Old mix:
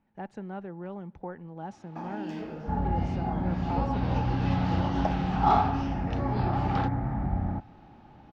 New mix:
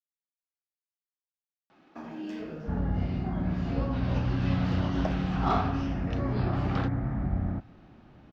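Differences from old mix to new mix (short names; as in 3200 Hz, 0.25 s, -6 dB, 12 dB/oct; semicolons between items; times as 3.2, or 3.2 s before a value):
speech: muted; reverb: off; master: add bell 840 Hz -15 dB 0.2 oct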